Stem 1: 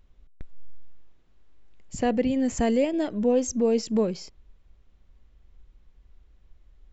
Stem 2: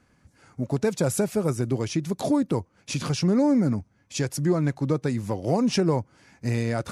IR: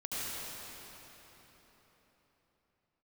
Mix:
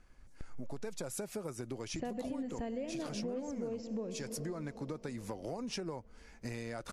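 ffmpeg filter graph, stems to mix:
-filter_complex "[0:a]lowpass=frequency=2800:poles=1,volume=-5.5dB,asplit=2[link_01][link_02];[link_02]volume=-15.5dB[link_03];[1:a]lowshelf=frequency=190:gain=-12,acompressor=threshold=-31dB:ratio=1.5,volume=-4.5dB[link_04];[2:a]atrim=start_sample=2205[link_05];[link_03][link_05]afir=irnorm=-1:irlink=0[link_06];[link_01][link_04][link_06]amix=inputs=3:normalize=0,acompressor=threshold=-37dB:ratio=5"

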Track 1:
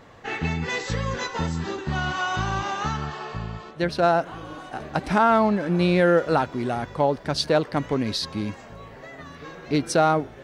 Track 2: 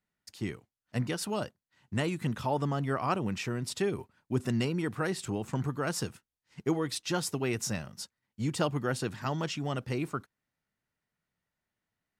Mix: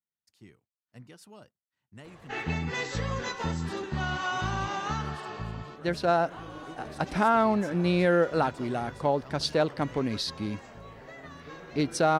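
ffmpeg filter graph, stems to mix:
ffmpeg -i stem1.wav -i stem2.wav -filter_complex "[0:a]adelay=2050,volume=-4.5dB[link_01];[1:a]volume=-17.5dB[link_02];[link_01][link_02]amix=inputs=2:normalize=0" out.wav

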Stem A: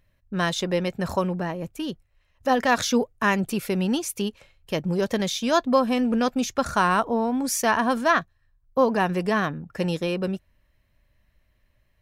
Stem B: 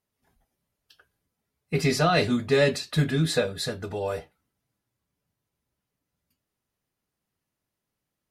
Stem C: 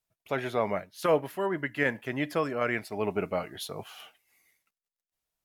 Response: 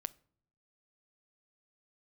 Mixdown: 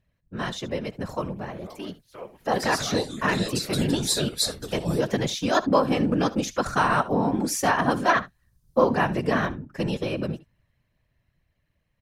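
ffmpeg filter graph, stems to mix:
-filter_complex "[0:a]volume=0dB,asplit=3[link_01][link_02][link_03];[link_02]volume=-17.5dB[link_04];[1:a]aexciter=amount=6.3:drive=4.5:freq=3600,adelay=800,volume=-0.5dB[link_05];[2:a]adelay=1100,volume=-11.5dB,asplit=2[link_06][link_07];[link_07]volume=-14.5dB[link_08];[link_03]apad=whole_len=401480[link_09];[link_05][link_09]sidechaincompress=threshold=-26dB:ratio=8:attack=24:release=1110[link_10];[link_04][link_08]amix=inputs=2:normalize=0,aecho=0:1:70:1[link_11];[link_01][link_10][link_06][link_11]amix=inputs=4:normalize=0,highshelf=frequency=11000:gain=-6,dynaudnorm=framelen=520:gausssize=11:maxgain=11.5dB,afftfilt=real='hypot(re,im)*cos(2*PI*random(0))':imag='hypot(re,im)*sin(2*PI*random(1))':win_size=512:overlap=0.75"

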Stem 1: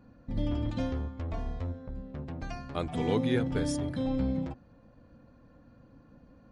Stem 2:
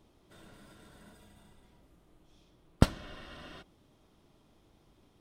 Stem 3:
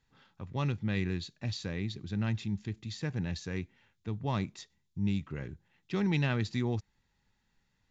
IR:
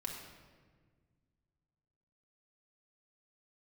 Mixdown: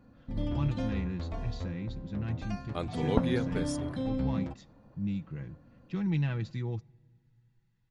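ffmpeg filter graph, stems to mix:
-filter_complex "[0:a]volume=-2dB[link_01];[1:a]lowpass=frequency=1000:width_type=q:width=1.7,adelay=350,volume=3dB[link_02];[2:a]bass=frequency=250:gain=8,treble=frequency=4000:gain=-5,aecho=1:1:6.1:0.53,volume=-9dB,asplit=3[link_03][link_04][link_05];[link_04]volume=-22dB[link_06];[link_05]apad=whole_len=244970[link_07];[link_02][link_07]sidechaincompress=threshold=-40dB:ratio=4:attack=16:release=1170[link_08];[3:a]atrim=start_sample=2205[link_09];[link_06][link_09]afir=irnorm=-1:irlink=0[link_10];[link_01][link_08][link_03][link_10]amix=inputs=4:normalize=0"

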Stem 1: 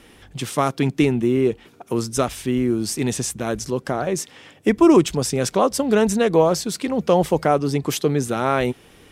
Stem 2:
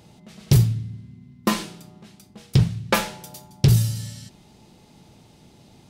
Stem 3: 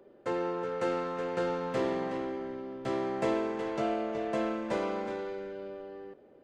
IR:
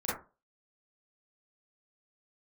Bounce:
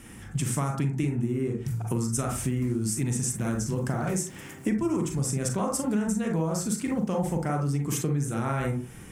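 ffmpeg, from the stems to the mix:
-filter_complex "[0:a]volume=-1.5dB,asplit=2[link_01][link_02];[link_02]volume=-4dB[link_03];[1:a]acompressor=threshold=-19dB:ratio=6,adelay=1150,volume=-13dB[link_04];[2:a]acompressor=threshold=-37dB:ratio=6,acrusher=samples=29:mix=1:aa=0.000001:lfo=1:lforange=46.4:lforate=2.8,adelay=2150,volume=-6dB[link_05];[3:a]atrim=start_sample=2205[link_06];[link_03][link_06]afir=irnorm=-1:irlink=0[link_07];[link_01][link_04][link_05][link_07]amix=inputs=4:normalize=0,equalizer=frequency=125:width_type=o:width=1:gain=8,equalizer=frequency=500:width_type=o:width=1:gain=-9,equalizer=frequency=1000:width_type=o:width=1:gain=-3,equalizer=frequency=4000:width_type=o:width=1:gain=-11,equalizer=frequency=8000:width_type=o:width=1:gain=8,acompressor=threshold=-25dB:ratio=6"

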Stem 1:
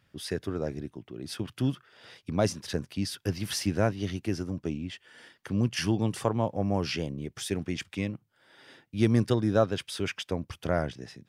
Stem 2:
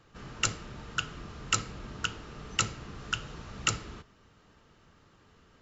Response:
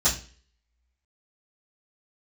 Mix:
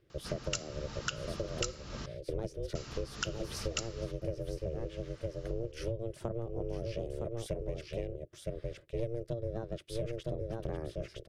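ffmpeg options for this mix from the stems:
-filter_complex "[0:a]lowshelf=frequency=470:width_type=q:width=3:gain=9,aeval=exprs='val(0)*sin(2*PI*230*n/s)':channel_layout=same,volume=-6.5dB,asplit=2[link_01][link_02];[link_02]volume=-7.5dB[link_03];[1:a]equalizer=frequency=5300:width=1.3:gain=10.5,adelay=100,volume=1.5dB,asplit=3[link_04][link_05][link_06];[link_04]atrim=end=2.06,asetpts=PTS-STARTPTS,afade=type=out:start_time=2.056:duration=0.004:curve=hsin[link_07];[link_05]atrim=start=2.06:end=2.75,asetpts=PTS-STARTPTS,volume=0[link_08];[link_06]atrim=start=2.75,asetpts=PTS-STARTPTS,afade=type=in:duration=0.004:curve=hsin[link_09];[link_07][link_08][link_09]concat=n=3:v=0:a=1[link_10];[link_03]aecho=0:1:962:1[link_11];[link_01][link_10][link_11]amix=inputs=3:normalize=0,acompressor=threshold=-32dB:ratio=10"

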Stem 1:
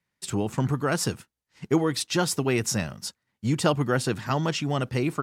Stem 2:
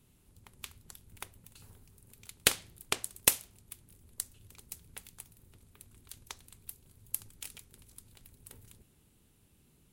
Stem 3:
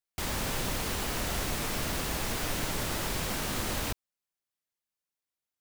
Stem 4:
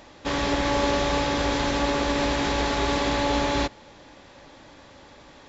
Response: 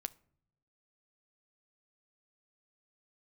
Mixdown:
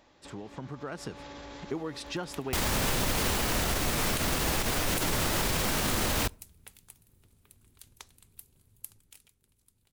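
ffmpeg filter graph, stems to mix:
-filter_complex "[0:a]lowpass=frequency=2100:poles=1,lowshelf=frequency=130:gain=-11.5,acompressor=threshold=-29dB:ratio=6,volume=-8.5dB,asplit=2[link_01][link_02];[1:a]adelay=1700,volume=-3.5dB,afade=type=out:start_time=8.54:duration=0.74:silence=0.334965[link_03];[2:a]adelay=2350,volume=2.5dB,asplit=2[link_04][link_05];[link_05]volume=-5dB[link_06];[3:a]alimiter=limit=-20dB:level=0:latency=1,acompressor=threshold=-33dB:ratio=6,volume=-15dB,asplit=2[link_07][link_08];[link_08]volume=-11.5dB[link_09];[link_02]apad=whole_len=242046[link_10];[link_07][link_10]sidechaincompress=threshold=-50dB:ratio=8:attack=31:release=107[link_11];[link_01][link_04][link_11]amix=inputs=3:normalize=0,dynaudnorm=framelen=110:gausssize=17:maxgain=6dB,alimiter=limit=-20dB:level=0:latency=1:release=73,volume=0dB[link_12];[4:a]atrim=start_sample=2205[link_13];[link_06][link_09]amix=inputs=2:normalize=0[link_14];[link_14][link_13]afir=irnorm=-1:irlink=0[link_15];[link_03][link_12][link_15]amix=inputs=3:normalize=0,alimiter=limit=-18.5dB:level=0:latency=1:release=63"

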